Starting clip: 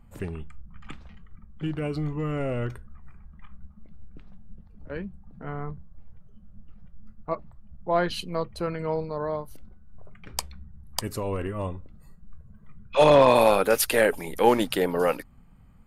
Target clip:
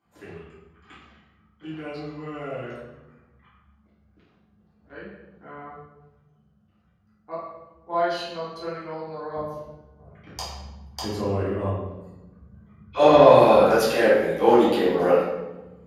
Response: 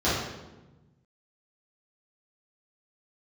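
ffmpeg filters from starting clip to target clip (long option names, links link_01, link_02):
-filter_complex "[0:a]asetnsamples=nb_out_samples=441:pad=0,asendcmd='9.35 highpass f 230',highpass=frequency=1200:poles=1[link_01];[1:a]atrim=start_sample=2205[link_02];[link_01][link_02]afir=irnorm=-1:irlink=0,volume=-13dB"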